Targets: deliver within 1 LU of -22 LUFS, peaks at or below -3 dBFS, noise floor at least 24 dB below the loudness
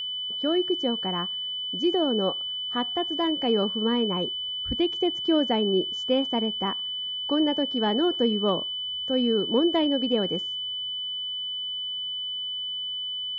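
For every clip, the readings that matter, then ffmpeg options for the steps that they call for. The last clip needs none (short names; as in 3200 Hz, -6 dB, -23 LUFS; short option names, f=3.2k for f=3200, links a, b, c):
steady tone 3000 Hz; tone level -29 dBFS; loudness -25.5 LUFS; peak -12.5 dBFS; loudness target -22.0 LUFS
-> -af "bandreject=f=3k:w=30"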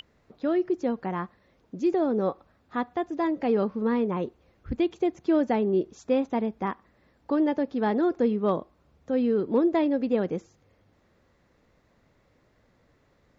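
steady tone none; loudness -27.0 LUFS; peak -14.0 dBFS; loudness target -22.0 LUFS
-> -af "volume=5dB"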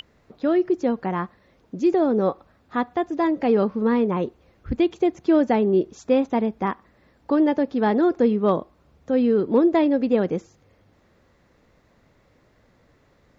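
loudness -22.0 LUFS; peak -9.0 dBFS; noise floor -61 dBFS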